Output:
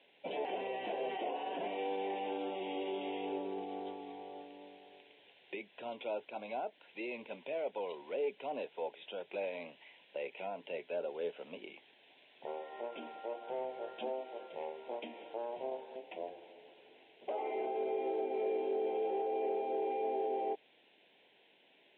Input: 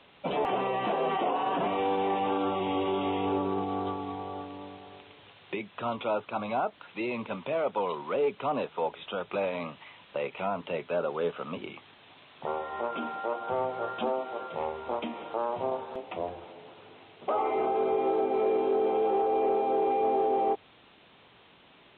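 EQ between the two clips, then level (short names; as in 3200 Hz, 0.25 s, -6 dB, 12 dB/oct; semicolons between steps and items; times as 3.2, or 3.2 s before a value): HPF 410 Hz 12 dB/oct; air absorption 200 m; fixed phaser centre 2900 Hz, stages 4; -3.5 dB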